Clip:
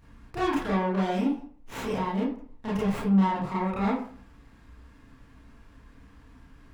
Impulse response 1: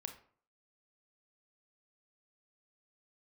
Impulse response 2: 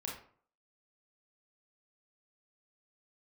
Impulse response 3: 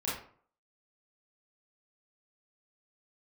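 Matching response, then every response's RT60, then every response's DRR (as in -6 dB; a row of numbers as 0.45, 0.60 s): 3; 0.50, 0.50, 0.50 s; 5.5, -3.0, -8.5 dB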